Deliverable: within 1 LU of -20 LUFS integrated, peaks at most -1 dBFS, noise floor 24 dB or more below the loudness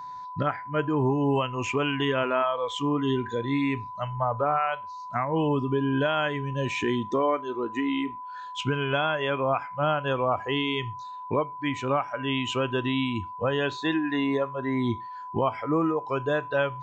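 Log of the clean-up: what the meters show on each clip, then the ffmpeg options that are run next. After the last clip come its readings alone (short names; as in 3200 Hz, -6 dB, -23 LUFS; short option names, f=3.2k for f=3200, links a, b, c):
steady tone 1000 Hz; tone level -36 dBFS; loudness -27.0 LUFS; peak -12.5 dBFS; loudness target -20.0 LUFS
-> -af "bandreject=f=1k:w=30"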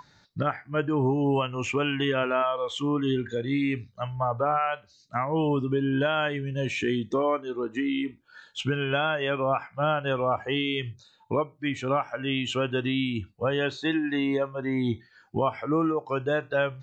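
steady tone none; loudness -27.5 LUFS; peak -13.0 dBFS; loudness target -20.0 LUFS
-> -af "volume=7.5dB"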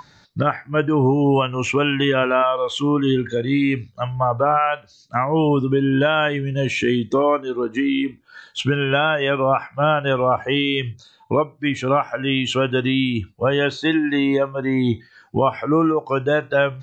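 loudness -20.0 LUFS; peak -5.5 dBFS; noise floor -53 dBFS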